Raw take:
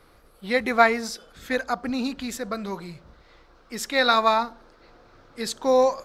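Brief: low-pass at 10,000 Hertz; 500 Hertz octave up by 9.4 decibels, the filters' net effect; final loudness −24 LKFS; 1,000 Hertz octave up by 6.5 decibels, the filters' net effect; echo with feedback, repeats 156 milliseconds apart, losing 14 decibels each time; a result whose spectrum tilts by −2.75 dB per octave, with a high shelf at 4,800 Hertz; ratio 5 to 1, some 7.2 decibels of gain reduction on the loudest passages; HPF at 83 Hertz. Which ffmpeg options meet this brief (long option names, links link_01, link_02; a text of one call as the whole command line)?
ffmpeg -i in.wav -af "highpass=83,lowpass=10000,equalizer=frequency=500:width_type=o:gain=9,equalizer=frequency=1000:width_type=o:gain=5,highshelf=frequency=4800:gain=8,acompressor=threshold=-13dB:ratio=5,aecho=1:1:156|312:0.2|0.0399,volume=-3dB" out.wav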